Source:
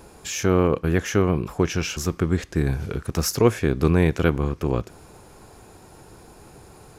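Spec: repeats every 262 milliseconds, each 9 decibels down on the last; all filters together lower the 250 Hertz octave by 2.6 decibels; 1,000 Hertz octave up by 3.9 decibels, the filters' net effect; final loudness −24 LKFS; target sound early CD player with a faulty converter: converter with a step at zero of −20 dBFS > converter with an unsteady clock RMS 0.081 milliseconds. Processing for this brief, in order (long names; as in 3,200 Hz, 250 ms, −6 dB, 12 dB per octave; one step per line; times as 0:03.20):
parametric band 250 Hz −4.5 dB
parametric band 1,000 Hz +5 dB
repeating echo 262 ms, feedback 35%, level −9 dB
converter with a step at zero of −20 dBFS
converter with an unsteady clock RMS 0.081 ms
level −4 dB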